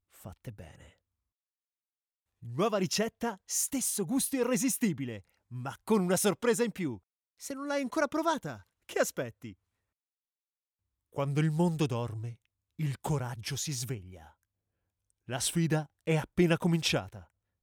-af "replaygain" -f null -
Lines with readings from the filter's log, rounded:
track_gain = +11.8 dB
track_peak = 0.142